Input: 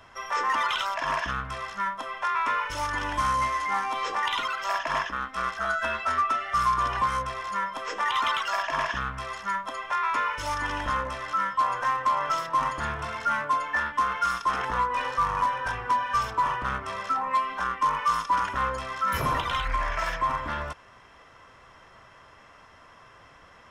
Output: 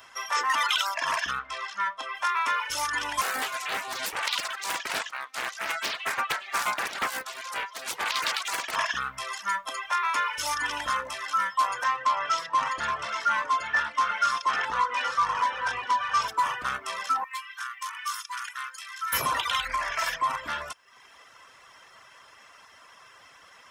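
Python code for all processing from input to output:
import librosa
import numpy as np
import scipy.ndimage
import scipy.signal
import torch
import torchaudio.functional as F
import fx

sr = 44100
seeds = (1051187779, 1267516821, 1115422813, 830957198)

y = fx.chain(x, sr, fx.lowpass(hz=5400.0, slope=12),
    fx.peak_eq(hz=140.0, db=-13.0, octaves=0.67), at=(1.39, 2.15))
y = fx.chain(y, sr, fx.highpass(hz=360.0, slope=24),
    fx.peak_eq(hz=1300.0, db=-4.5, octaves=2.5),
    fx.doppler_dist(depth_ms=0.99), at=(3.21, 8.76))
y = fx.chain(y, sr, fx.lowpass(hz=5700.0, slope=12),
    fx.echo_single(ms=824, db=-8.5), at=(11.84, 16.28))
y = fx.chain(y, sr, fx.highpass(hz=1400.0, slope=24),
    fx.peak_eq(hz=3400.0, db=-5.0, octaves=2.9), at=(17.24, 19.13))
y = fx.dereverb_blind(y, sr, rt60_s=0.64)
y = fx.tilt_eq(y, sr, slope=3.5)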